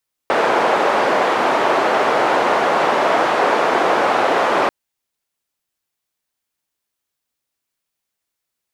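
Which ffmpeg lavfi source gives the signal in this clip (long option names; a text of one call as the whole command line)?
ffmpeg -f lavfi -i "anoisesrc=color=white:duration=4.39:sample_rate=44100:seed=1,highpass=frequency=480,lowpass=frequency=830,volume=5.8dB" out.wav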